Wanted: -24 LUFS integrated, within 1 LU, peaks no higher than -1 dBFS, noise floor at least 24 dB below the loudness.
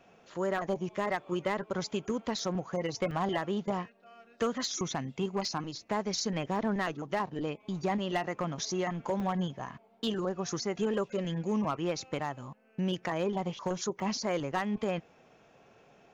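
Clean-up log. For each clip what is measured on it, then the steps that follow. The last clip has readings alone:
clipped samples 0.5%; clipping level -23.0 dBFS; dropouts 8; longest dropout 1.4 ms; loudness -33.5 LUFS; peak level -23.0 dBFS; loudness target -24.0 LUFS
-> clip repair -23 dBFS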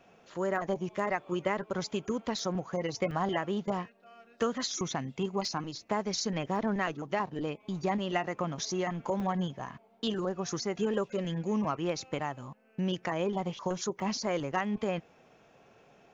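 clipped samples 0.0%; dropouts 8; longest dropout 1.4 ms
-> interpolate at 0.56/2.39/3.11/5.45/6.56/8.59/9.20/14.00 s, 1.4 ms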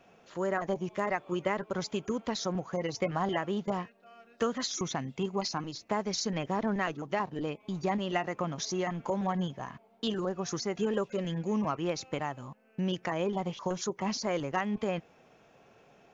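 dropouts 0; loudness -33.0 LUFS; peak level -15.5 dBFS; loudness target -24.0 LUFS
-> trim +9 dB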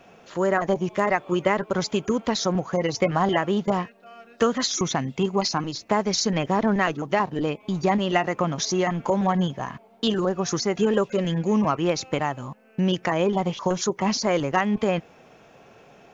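loudness -24.0 LUFS; peak level -6.5 dBFS; noise floor -53 dBFS

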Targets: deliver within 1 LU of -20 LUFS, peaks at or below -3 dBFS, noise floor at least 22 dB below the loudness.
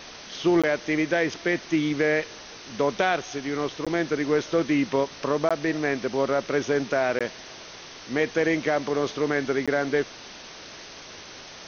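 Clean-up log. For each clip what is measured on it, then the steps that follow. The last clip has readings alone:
dropouts 5; longest dropout 16 ms; noise floor -43 dBFS; noise floor target -48 dBFS; loudness -25.5 LUFS; peak level -9.5 dBFS; loudness target -20.0 LUFS
-> interpolate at 0.62/3.85/5.49/7.19/9.66 s, 16 ms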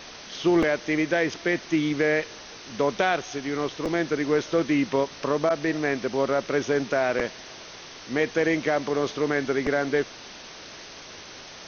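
dropouts 0; noise floor -43 dBFS; noise floor target -47 dBFS
-> noise reduction 6 dB, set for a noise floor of -43 dBFS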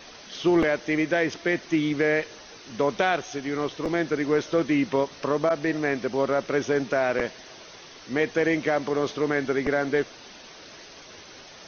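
noise floor -46 dBFS; noise floor target -48 dBFS
-> noise reduction 6 dB, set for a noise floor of -46 dBFS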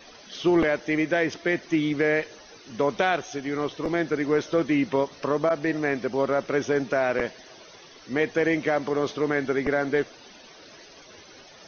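noise floor -49 dBFS; loudness -25.5 LUFS; peak level -9.5 dBFS; loudness target -20.0 LUFS
-> trim +5.5 dB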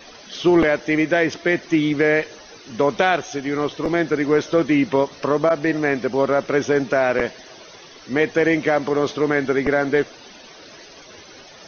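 loudness -20.0 LUFS; peak level -4.0 dBFS; noise floor -43 dBFS

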